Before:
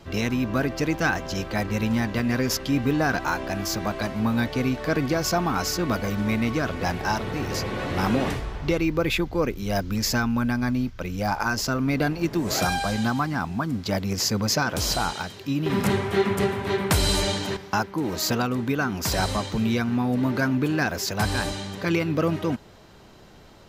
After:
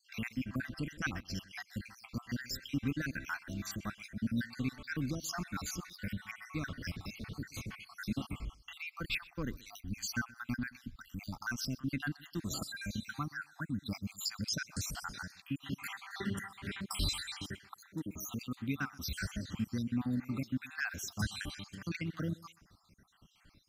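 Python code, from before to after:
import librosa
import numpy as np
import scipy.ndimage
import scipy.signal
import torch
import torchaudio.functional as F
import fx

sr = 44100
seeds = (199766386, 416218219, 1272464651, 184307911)

y = fx.spec_dropout(x, sr, seeds[0], share_pct=64)
y = fx.band_shelf(y, sr, hz=600.0, db=-12.5, octaves=1.7)
y = fx.echo_feedback(y, sr, ms=126, feedback_pct=16, wet_db=-22)
y = y * 10.0 ** (-8.5 / 20.0)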